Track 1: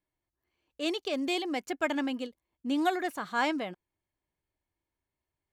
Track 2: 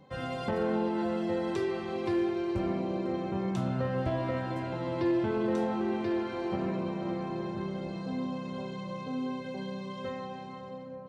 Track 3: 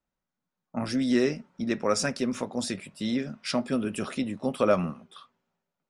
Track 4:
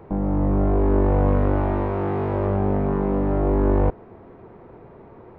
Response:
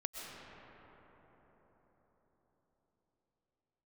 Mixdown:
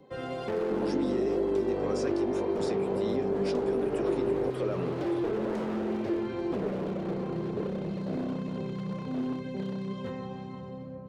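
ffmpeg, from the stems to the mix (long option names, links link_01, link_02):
-filter_complex "[0:a]volume=-18dB[link_01];[1:a]asubboost=boost=9.5:cutoff=130,aeval=exprs='0.0473*(abs(mod(val(0)/0.0473+3,4)-2)-1)':channel_layout=same,volume=1.5dB[link_02];[2:a]alimiter=limit=-21dB:level=0:latency=1,volume=-1.5dB[link_03];[3:a]adelay=600,volume=-7dB[link_04];[link_01][link_02][link_03][link_04]amix=inputs=4:normalize=0,equalizer=frequency=400:width_type=o:width=0.68:gain=13,acrossover=split=130|7100[link_05][link_06][link_07];[link_05]acompressor=threshold=-47dB:ratio=4[link_08];[link_06]acompressor=threshold=-21dB:ratio=4[link_09];[link_07]acompressor=threshold=-58dB:ratio=4[link_10];[link_08][link_09][link_10]amix=inputs=3:normalize=0,flanger=delay=2.8:depth=6.5:regen=82:speed=2:shape=triangular"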